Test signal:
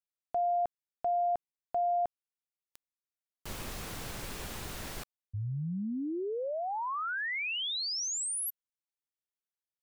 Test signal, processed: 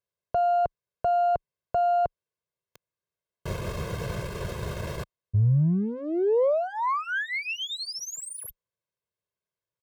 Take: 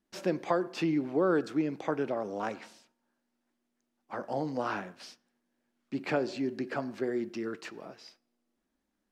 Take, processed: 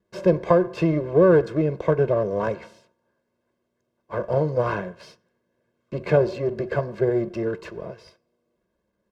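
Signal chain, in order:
gain on one half-wave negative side −7 dB
high-pass filter 130 Hz 12 dB per octave
spectral tilt −3.5 dB per octave
comb filter 1.9 ms, depth 95%
level +7 dB

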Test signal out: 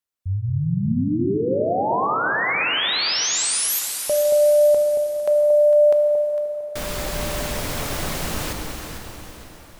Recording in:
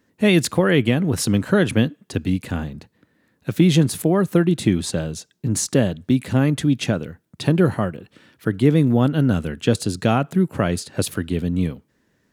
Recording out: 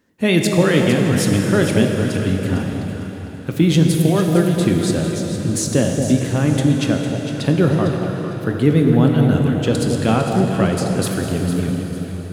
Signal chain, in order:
on a send: delay that swaps between a low-pass and a high-pass 227 ms, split 880 Hz, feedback 55%, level −5 dB
on the sum: dense smooth reverb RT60 4.5 s, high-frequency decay 0.85×, DRR 2.5 dB

